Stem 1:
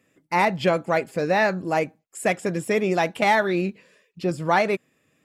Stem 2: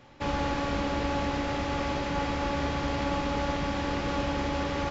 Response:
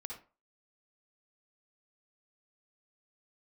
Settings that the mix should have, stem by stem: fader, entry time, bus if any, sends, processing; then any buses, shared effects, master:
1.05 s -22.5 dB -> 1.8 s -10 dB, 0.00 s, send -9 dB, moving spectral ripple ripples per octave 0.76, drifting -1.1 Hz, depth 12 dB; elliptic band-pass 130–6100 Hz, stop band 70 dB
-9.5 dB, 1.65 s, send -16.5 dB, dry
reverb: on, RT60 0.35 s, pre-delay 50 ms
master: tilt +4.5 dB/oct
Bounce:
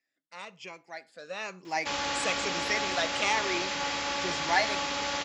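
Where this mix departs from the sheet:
stem 2 -9.5 dB -> -1.5 dB; reverb return -6.5 dB

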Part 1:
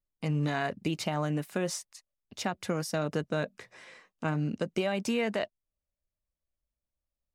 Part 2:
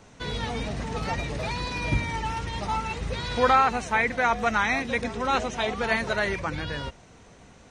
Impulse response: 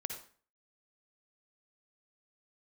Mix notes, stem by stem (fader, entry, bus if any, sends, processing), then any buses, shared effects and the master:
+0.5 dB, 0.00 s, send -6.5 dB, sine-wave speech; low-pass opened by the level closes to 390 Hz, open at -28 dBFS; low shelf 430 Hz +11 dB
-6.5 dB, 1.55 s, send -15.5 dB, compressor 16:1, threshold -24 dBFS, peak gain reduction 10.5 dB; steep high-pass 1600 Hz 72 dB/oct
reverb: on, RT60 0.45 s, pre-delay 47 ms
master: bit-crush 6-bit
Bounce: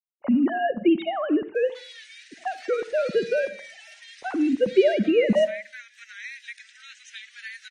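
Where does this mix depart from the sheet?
stem 2: send off; master: missing bit-crush 6-bit

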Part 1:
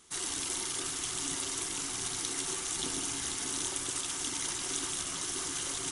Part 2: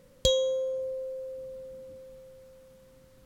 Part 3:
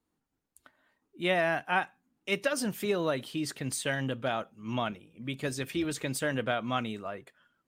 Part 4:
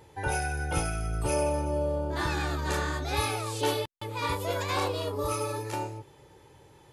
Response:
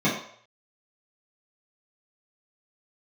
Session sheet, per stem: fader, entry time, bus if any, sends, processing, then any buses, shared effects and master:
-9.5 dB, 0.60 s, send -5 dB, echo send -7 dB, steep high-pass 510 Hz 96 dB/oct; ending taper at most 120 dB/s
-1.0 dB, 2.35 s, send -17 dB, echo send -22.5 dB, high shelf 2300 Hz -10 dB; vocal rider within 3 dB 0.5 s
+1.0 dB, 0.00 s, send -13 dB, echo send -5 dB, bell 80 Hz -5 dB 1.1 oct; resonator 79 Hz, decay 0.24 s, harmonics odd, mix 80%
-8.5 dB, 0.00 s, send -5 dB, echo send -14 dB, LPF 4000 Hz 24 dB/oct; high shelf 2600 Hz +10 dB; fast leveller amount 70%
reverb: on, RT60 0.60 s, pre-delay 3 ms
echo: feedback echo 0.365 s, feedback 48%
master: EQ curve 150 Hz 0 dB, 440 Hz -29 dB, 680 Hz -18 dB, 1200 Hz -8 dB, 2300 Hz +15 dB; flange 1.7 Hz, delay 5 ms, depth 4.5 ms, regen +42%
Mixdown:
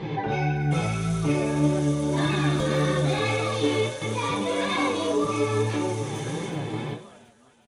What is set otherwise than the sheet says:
stem 3 +1.0 dB -> -7.0 dB; master: missing EQ curve 150 Hz 0 dB, 440 Hz -29 dB, 680 Hz -18 dB, 1200 Hz -8 dB, 2300 Hz +15 dB

